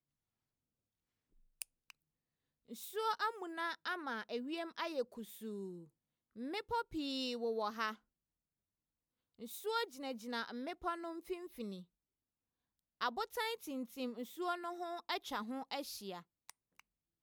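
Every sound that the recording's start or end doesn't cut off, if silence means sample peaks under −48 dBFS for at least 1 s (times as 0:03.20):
0:01.62–0:07.94
0:09.40–0:11.82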